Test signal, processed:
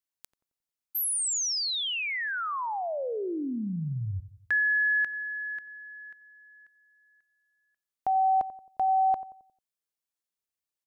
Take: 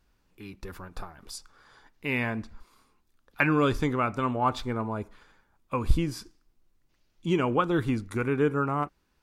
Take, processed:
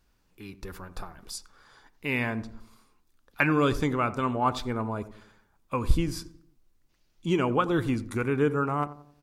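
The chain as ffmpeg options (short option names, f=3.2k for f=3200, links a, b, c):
-filter_complex "[0:a]bass=f=250:g=0,treble=f=4k:g=3,asplit=2[a][b];[b]adelay=89,lowpass=f=940:p=1,volume=-14dB,asplit=2[c][d];[d]adelay=89,lowpass=f=940:p=1,volume=0.49,asplit=2[e][f];[f]adelay=89,lowpass=f=940:p=1,volume=0.49,asplit=2[g][h];[h]adelay=89,lowpass=f=940:p=1,volume=0.49,asplit=2[i][j];[j]adelay=89,lowpass=f=940:p=1,volume=0.49[k];[c][e][g][i][k]amix=inputs=5:normalize=0[l];[a][l]amix=inputs=2:normalize=0"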